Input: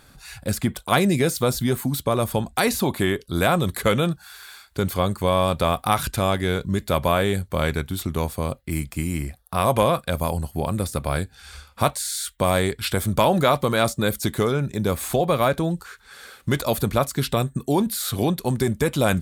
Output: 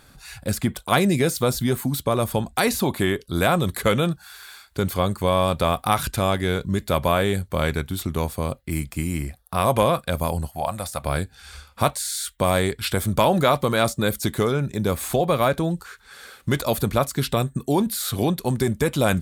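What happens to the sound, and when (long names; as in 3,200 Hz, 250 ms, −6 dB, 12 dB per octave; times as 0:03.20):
0:10.49–0:11.04: low shelf with overshoot 520 Hz −8 dB, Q 3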